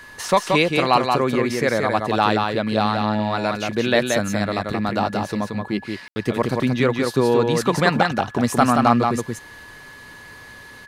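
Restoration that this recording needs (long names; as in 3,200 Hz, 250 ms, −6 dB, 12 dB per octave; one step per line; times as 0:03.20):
notch filter 1,700 Hz, Q 30
ambience match 0:06.08–0:06.16
echo removal 178 ms −4 dB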